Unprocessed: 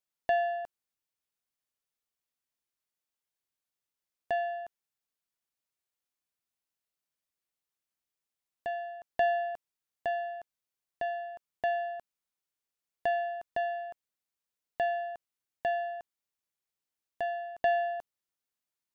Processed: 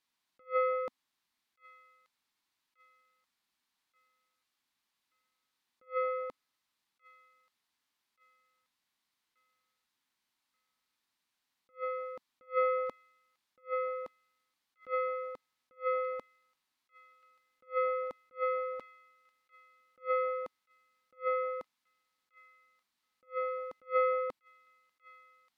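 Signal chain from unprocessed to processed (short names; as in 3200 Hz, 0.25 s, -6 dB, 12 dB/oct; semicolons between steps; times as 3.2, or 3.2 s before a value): speed mistake 45 rpm record played at 33 rpm; ten-band EQ 250 Hz +10 dB, 500 Hz -4 dB, 1000 Hz +10 dB, 2000 Hz +6 dB, 4000 Hz +9 dB; on a send: thin delay 1.181 s, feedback 34%, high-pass 2200 Hz, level -19 dB; on the sum: attack slew limiter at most 320 dB/s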